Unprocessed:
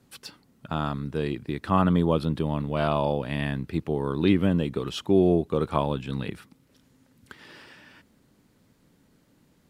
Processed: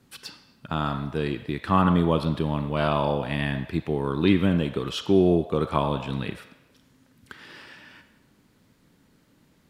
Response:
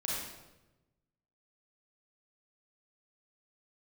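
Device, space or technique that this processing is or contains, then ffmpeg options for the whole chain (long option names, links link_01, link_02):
filtered reverb send: -filter_complex "[0:a]asplit=2[link_01][link_02];[link_02]highpass=frequency=580:width=0.5412,highpass=frequency=580:width=1.3066,lowpass=5500[link_03];[1:a]atrim=start_sample=2205[link_04];[link_03][link_04]afir=irnorm=-1:irlink=0,volume=-9.5dB[link_05];[link_01][link_05]amix=inputs=2:normalize=0,volume=1dB"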